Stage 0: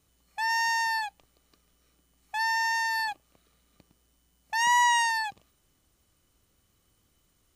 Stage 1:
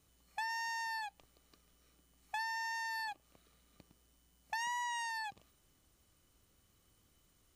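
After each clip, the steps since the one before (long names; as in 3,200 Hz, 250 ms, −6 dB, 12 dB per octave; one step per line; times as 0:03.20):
downward compressor 6 to 1, threshold −35 dBFS, peak gain reduction 15 dB
level −2 dB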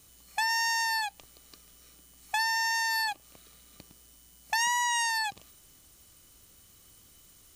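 high-shelf EQ 3,300 Hz +10 dB
level +8.5 dB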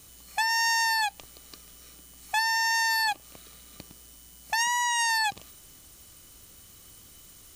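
brickwall limiter −23.5 dBFS, peak gain reduction 6 dB
level +6 dB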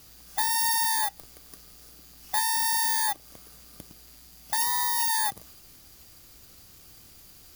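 samples in bit-reversed order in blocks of 16 samples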